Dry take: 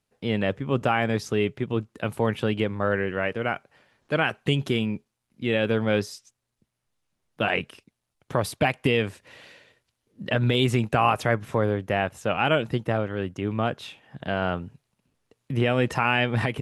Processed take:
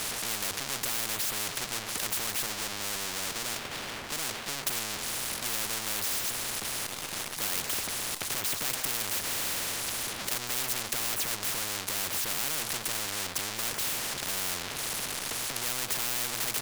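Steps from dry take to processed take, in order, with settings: 2.46–4.67 s: band-pass filter 290 Hz, Q 1.2; power-law waveshaper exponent 0.35; spectrum-flattening compressor 10:1; trim -5 dB

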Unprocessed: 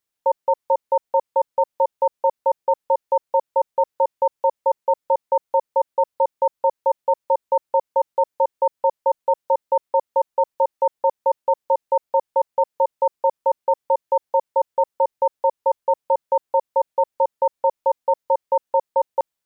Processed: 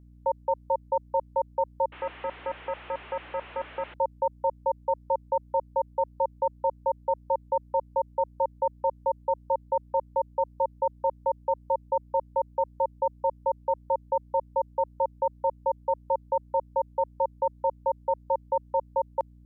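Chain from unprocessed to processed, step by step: 1.92–3.94 s: one-bit delta coder 16 kbps, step -31.5 dBFS; Chebyshev high-pass 280 Hz, order 4; hum 60 Hz, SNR 23 dB; trim -7 dB

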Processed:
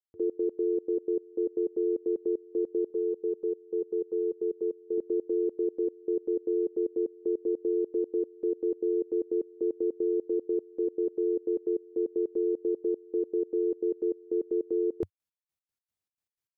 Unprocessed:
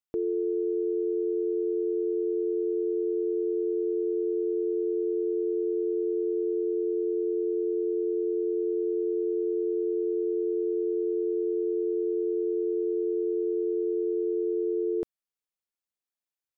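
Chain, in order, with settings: peaking EQ 94 Hz +15 dB 1.1 oct; trance gate "..x.x.xx.x.x" 153 bpm -24 dB; 2.90–4.98 s: static phaser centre 430 Hz, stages 8

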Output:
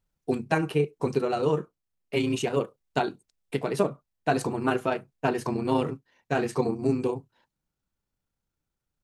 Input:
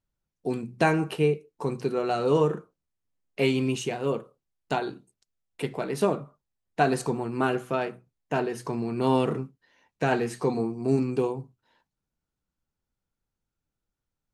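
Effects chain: gain riding within 3 dB 0.5 s; granular stretch 0.63×, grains 67 ms; trim +2 dB

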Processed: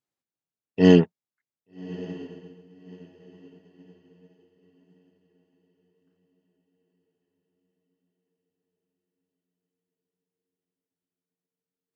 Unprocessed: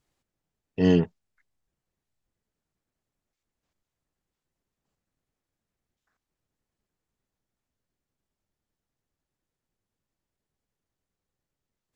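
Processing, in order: high-pass 140 Hz 12 dB/octave; echo that smears into a reverb 1196 ms, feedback 48%, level -10.5 dB; upward expansion 1.5:1, over -56 dBFS; trim +6.5 dB

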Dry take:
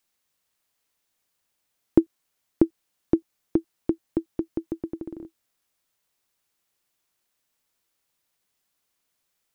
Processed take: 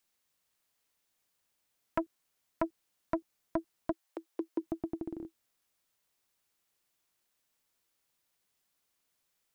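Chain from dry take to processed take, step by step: 3.91–4.61 s: high-pass 740 Hz -> 270 Hz 24 dB/octave; transformer saturation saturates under 1.4 kHz; trim -2.5 dB

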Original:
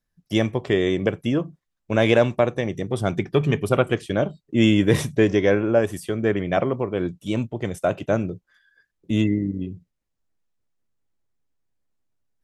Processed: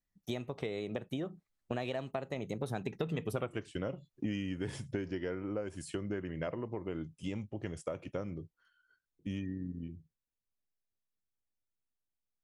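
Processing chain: Doppler pass-by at 3.39 s, 35 m/s, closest 6.7 m; compression 12:1, threshold -50 dBFS, peak gain reduction 35.5 dB; trim +16.5 dB

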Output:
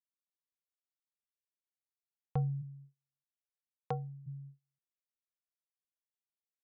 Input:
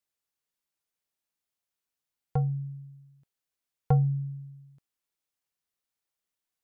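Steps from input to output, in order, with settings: low-pass 1.2 kHz; gate -45 dBFS, range -32 dB; 2.61–4.26 s: high-pass 140 Hz -> 310 Hz 12 dB/octave; trim -5.5 dB

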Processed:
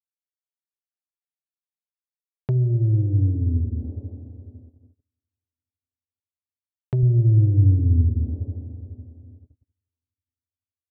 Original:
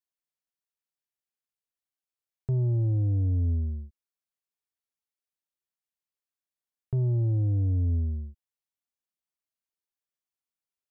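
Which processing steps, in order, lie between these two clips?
level-controlled noise filter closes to 590 Hz; Schroeder reverb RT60 3.2 s, combs from 28 ms, DRR 4.5 dB; low-pass that closes with the level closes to 300 Hz, closed at -24 dBFS; high-pass 150 Hz 6 dB/octave, from 7.03 s 59 Hz; gate -55 dBFS, range -32 dB; trim +9 dB

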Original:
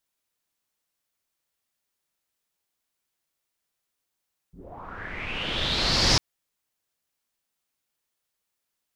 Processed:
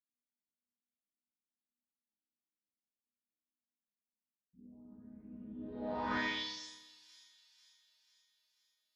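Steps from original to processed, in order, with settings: high-pass 59 Hz 24 dB/octave; chord resonator G#3 minor, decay 0.65 s; feedback echo behind a high-pass 491 ms, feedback 52%, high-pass 2.1 kHz, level -21 dB; Schroeder reverb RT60 1.1 s, combs from 29 ms, DRR -0.5 dB; low-pass sweep 230 Hz -> 12 kHz, 5.57–6.81 s; trim +5.5 dB

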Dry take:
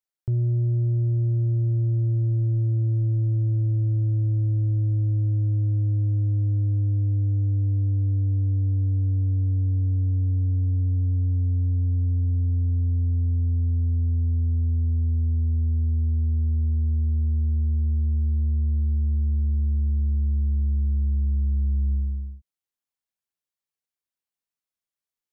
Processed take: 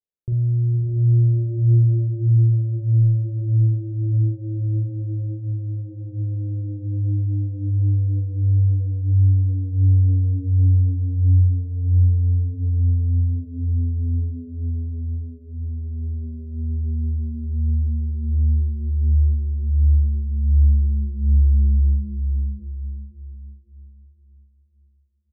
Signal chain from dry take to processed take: Chebyshev low-pass 530 Hz, order 3; doubling 43 ms -4 dB; echo that smears into a reverb 575 ms, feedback 42%, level -4 dB

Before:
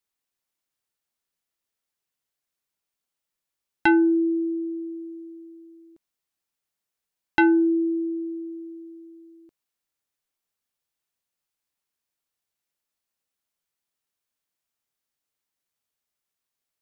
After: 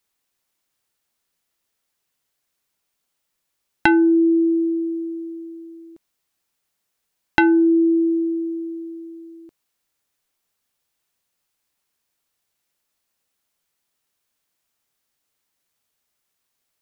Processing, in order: compression, threshold -22 dBFS, peak gain reduction 7 dB; trim +9 dB

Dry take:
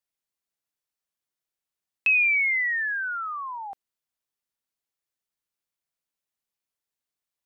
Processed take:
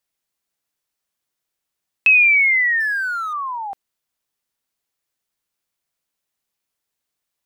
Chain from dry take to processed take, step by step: 2.80–3.33 s: companding laws mixed up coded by A; trim +8 dB

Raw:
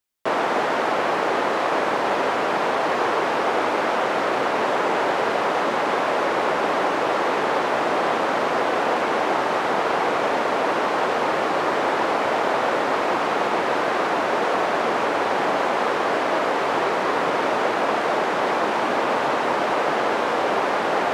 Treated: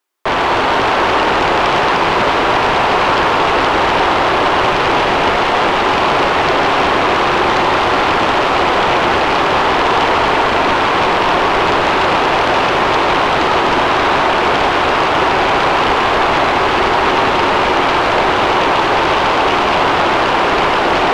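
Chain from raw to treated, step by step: rippled Chebyshev high-pass 260 Hz, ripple 6 dB; treble shelf 2.7 kHz -5.5 dB; sine folder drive 17 dB, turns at -6 dBFS; reverberation RT60 3.6 s, pre-delay 88 ms, DRR 3 dB; trim -5.5 dB

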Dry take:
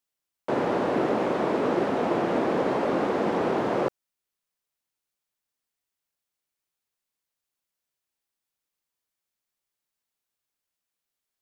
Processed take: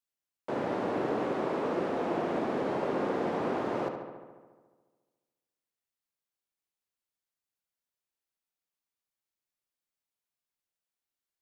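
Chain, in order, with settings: filtered feedback delay 71 ms, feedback 73%, low-pass 4.2 kHz, level -7 dB; trim -7.5 dB

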